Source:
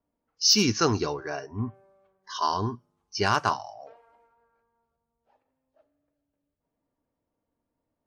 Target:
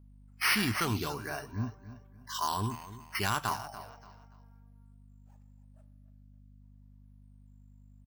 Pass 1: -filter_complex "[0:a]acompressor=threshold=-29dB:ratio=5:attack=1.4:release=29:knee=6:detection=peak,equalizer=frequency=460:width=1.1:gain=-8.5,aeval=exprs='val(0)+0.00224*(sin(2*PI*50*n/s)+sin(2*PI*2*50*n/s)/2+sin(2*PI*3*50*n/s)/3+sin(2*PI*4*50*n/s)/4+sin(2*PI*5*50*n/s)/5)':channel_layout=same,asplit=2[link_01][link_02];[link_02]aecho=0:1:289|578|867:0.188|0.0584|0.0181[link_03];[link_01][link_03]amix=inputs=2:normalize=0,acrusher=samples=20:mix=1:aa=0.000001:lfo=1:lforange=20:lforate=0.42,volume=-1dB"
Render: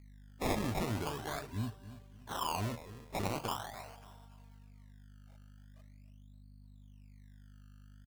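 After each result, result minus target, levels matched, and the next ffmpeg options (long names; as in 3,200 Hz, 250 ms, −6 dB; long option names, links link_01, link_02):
downward compressor: peak gain reduction +5.5 dB; sample-and-hold swept by an LFO: distortion +5 dB
-filter_complex "[0:a]acompressor=threshold=-22dB:ratio=5:attack=1.4:release=29:knee=6:detection=peak,equalizer=frequency=460:width=1.1:gain=-8.5,aeval=exprs='val(0)+0.00224*(sin(2*PI*50*n/s)+sin(2*PI*2*50*n/s)/2+sin(2*PI*3*50*n/s)/3+sin(2*PI*4*50*n/s)/4+sin(2*PI*5*50*n/s)/5)':channel_layout=same,asplit=2[link_01][link_02];[link_02]aecho=0:1:289|578|867:0.188|0.0584|0.0181[link_03];[link_01][link_03]amix=inputs=2:normalize=0,acrusher=samples=20:mix=1:aa=0.000001:lfo=1:lforange=20:lforate=0.42,volume=-1dB"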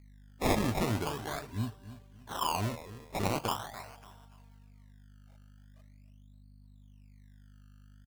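sample-and-hold swept by an LFO: distortion +7 dB
-filter_complex "[0:a]acompressor=threshold=-22dB:ratio=5:attack=1.4:release=29:knee=6:detection=peak,equalizer=frequency=460:width=1.1:gain=-8.5,aeval=exprs='val(0)+0.00224*(sin(2*PI*50*n/s)+sin(2*PI*2*50*n/s)/2+sin(2*PI*3*50*n/s)/3+sin(2*PI*4*50*n/s)/4+sin(2*PI*5*50*n/s)/5)':channel_layout=same,asplit=2[link_01][link_02];[link_02]aecho=0:1:289|578|867:0.188|0.0584|0.0181[link_03];[link_01][link_03]amix=inputs=2:normalize=0,acrusher=samples=4:mix=1:aa=0.000001:lfo=1:lforange=4:lforate=0.42,volume=-1dB"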